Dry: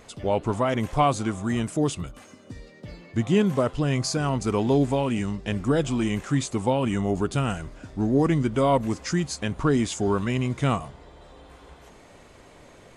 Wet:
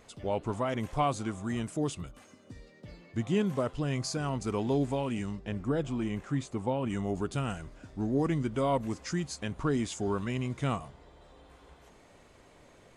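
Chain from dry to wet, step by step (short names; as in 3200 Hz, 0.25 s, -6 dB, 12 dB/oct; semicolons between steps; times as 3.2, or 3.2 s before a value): 5.39–6.9 high shelf 2900 Hz -9 dB; gain -7.5 dB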